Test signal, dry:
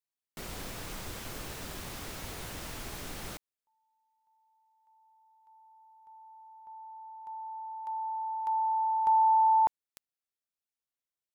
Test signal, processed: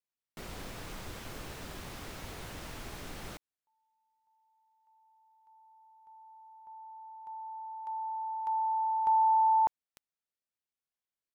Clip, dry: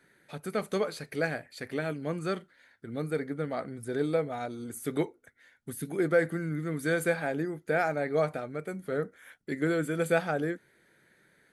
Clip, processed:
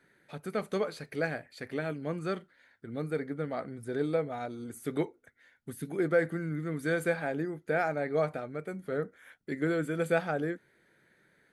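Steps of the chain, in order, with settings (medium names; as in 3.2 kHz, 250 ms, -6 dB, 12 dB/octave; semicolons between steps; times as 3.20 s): treble shelf 5.4 kHz -6.5 dB; trim -1.5 dB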